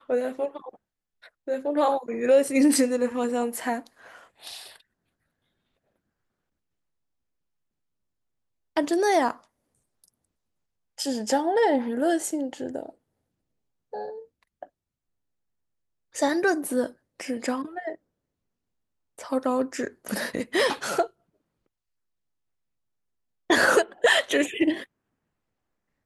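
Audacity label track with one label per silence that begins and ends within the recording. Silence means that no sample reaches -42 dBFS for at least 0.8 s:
4.760000	8.760000	silence
10.080000	10.980000	silence
12.900000	13.930000	silence
14.650000	16.150000	silence
17.950000	19.180000	silence
21.070000	23.500000	silence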